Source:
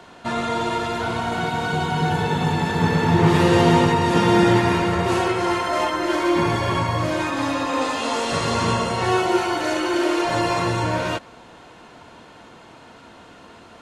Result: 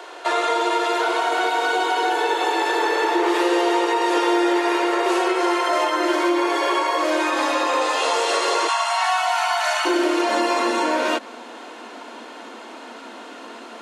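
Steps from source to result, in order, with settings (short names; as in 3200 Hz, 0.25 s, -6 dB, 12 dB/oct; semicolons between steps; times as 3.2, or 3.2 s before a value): steep high-pass 310 Hz 96 dB/oct, from 8.67 s 650 Hz, from 9.85 s 220 Hz; compressor 4:1, threshold -25 dBFS, peak gain reduction 10 dB; gain +7.5 dB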